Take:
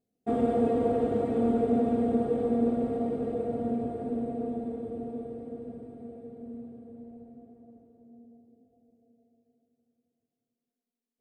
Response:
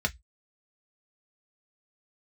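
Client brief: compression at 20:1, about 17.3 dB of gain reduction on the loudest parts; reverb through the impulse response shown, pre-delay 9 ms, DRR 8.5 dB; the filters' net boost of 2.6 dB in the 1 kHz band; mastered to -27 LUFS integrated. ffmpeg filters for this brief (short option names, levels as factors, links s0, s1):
-filter_complex "[0:a]equalizer=f=1000:t=o:g=5,acompressor=threshold=0.0126:ratio=20,asplit=2[s0][s1];[1:a]atrim=start_sample=2205,adelay=9[s2];[s1][s2]afir=irnorm=-1:irlink=0,volume=0.15[s3];[s0][s3]amix=inputs=2:normalize=0,volume=5.62"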